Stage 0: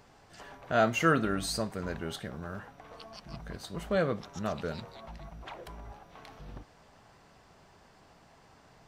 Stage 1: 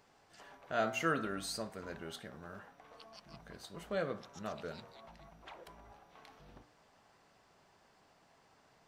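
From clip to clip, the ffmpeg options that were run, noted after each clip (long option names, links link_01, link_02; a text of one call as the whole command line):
ffmpeg -i in.wav -af "lowshelf=frequency=150:gain=-10,bandreject=frequency=59.86:width_type=h:width=4,bandreject=frequency=119.72:width_type=h:width=4,bandreject=frequency=179.58:width_type=h:width=4,bandreject=frequency=239.44:width_type=h:width=4,bandreject=frequency=299.3:width_type=h:width=4,bandreject=frequency=359.16:width_type=h:width=4,bandreject=frequency=419.02:width_type=h:width=4,bandreject=frequency=478.88:width_type=h:width=4,bandreject=frequency=538.74:width_type=h:width=4,bandreject=frequency=598.6:width_type=h:width=4,bandreject=frequency=658.46:width_type=h:width=4,bandreject=frequency=718.32:width_type=h:width=4,bandreject=frequency=778.18:width_type=h:width=4,bandreject=frequency=838.04:width_type=h:width=4,bandreject=frequency=897.9:width_type=h:width=4,bandreject=frequency=957.76:width_type=h:width=4,bandreject=frequency=1017.62:width_type=h:width=4,bandreject=frequency=1077.48:width_type=h:width=4,bandreject=frequency=1137.34:width_type=h:width=4,bandreject=frequency=1197.2:width_type=h:width=4,bandreject=frequency=1257.06:width_type=h:width=4,bandreject=frequency=1316.92:width_type=h:width=4,bandreject=frequency=1376.78:width_type=h:width=4,bandreject=frequency=1436.64:width_type=h:width=4,bandreject=frequency=1496.5:width_type=h:width=4,bandreject=frequency=1556.36:width_type=h:width=4,bandreject=frequency=1616.22:width_type=h:width=4,bandreject=frequency=1676.08:width_type=h:width=4,bandreject=frequency=1735.94:width_type=h:width=4,bandreject=frequency=1795.8:width_type=h:width=4,bandreject=frequency=1855.66:width_type=h:width=4,volume=-6.5dB" out.wav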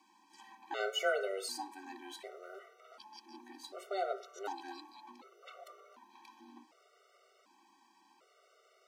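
ffmpeg -i in.wav -af "afreqshift=190,bandreject=frequency=1700:width=5.2,afftfilt=real='re*gt(sin(2*PI*0.67*pts/sr)*(1-2*mod(floor(b*sr/1024/380),2)),0)':imag='im*gt(sin(2*PI*0.67*pts/sr)*(1-2*mod(floor(b*sr/1024/380),2)),0)':win_size=1024:overlap=0.75,volume=3.5dB" out.wav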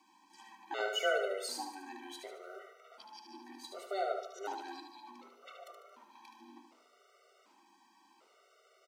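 ffmpeg -i in.wav -af "aecho=1:1:74|148|222|296|370:0.473|0.208|0.0916|0.0403|0.0177" out.wav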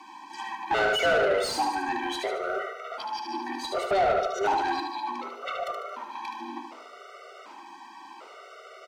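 ffmpeg -i in.wav -filter_complex "[0:a]asplit=2[link_01][link_02];[link_02]alimiter=level_in=6dB:limit=-24dB:level=0:latency=1:release=120,volume=-6dB,volume=2dB[link_03];[link_01][link_03]amix=inputs=2:normalize=0,asplit=2[link_04][link_05];[link_05]highpass=frequency=720:poles=1,volume=21dB,asoftclip=type=tanh:threshold=-16.5dB[link_06];[link_04][link_06]amix=inputs=2:normalize=0,lowpass=frequency=1600:poles=1,volume=-6dB,volume=2dB" out.wav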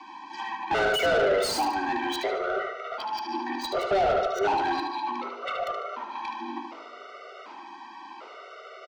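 ffmpeg -i in.wav -filter_complex "[0:a]aecho=1:1:225|450|675:0.0708|0.0297|0.0125,acrossover=split=360|450|6100[link_01][link_02][link_03][link_04];[link_03]asoftclip=type=tanh:threshold=-24.5dB[link_05];[link_04]acrusher=bits=6:mix=0:aa=0.000001[link_06];[link_01][link_02][link_05][link_06]amix=inputs=4:normalize=0,volume=2.5dB" out.wav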